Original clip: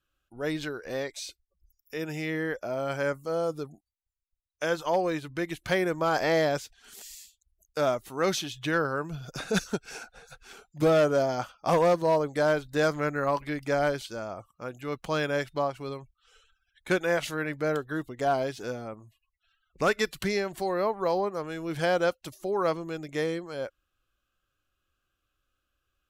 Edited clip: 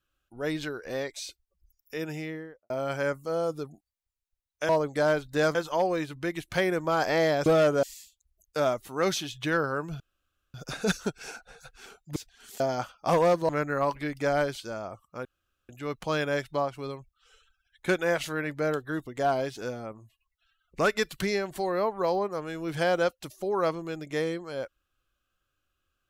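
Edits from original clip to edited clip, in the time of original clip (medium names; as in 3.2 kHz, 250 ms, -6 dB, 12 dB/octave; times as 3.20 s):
2.01–2.70 s: studio fade out
6.60–7.04 s: swap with 10.83–11.20 s
9.21 s: insert room tone 0.54 s
12.09–12.95 s: move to 4.69 s
14.71 s: insert room tone 0.44 s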